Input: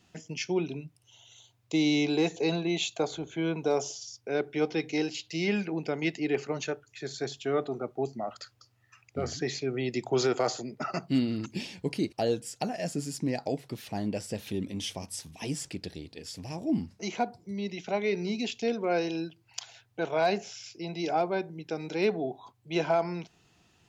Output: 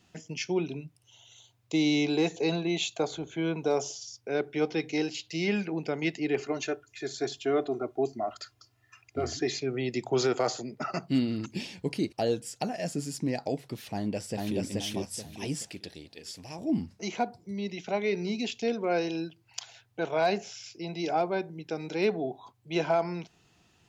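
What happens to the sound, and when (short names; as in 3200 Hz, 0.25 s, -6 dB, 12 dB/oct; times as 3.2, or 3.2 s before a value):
6.39–9.6 comb 2.9 ms
13.94–14.59 echo throw 0.43 s, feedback 35%, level -1 dB
15.63–16.59 low shelf 390 Hz -8 dB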